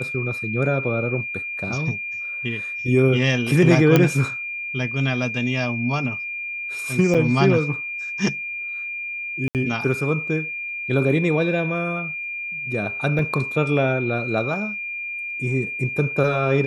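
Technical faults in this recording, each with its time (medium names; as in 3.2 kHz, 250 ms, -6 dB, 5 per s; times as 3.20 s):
whine 2.4 kHz -27 dBFS
3.96 s: pop -3 dBFS
7.14–7.15 s: dropout 6.8 ms
9.48–9.55 s: dropout 68 ms
13.19 s: dropout 2.1 ms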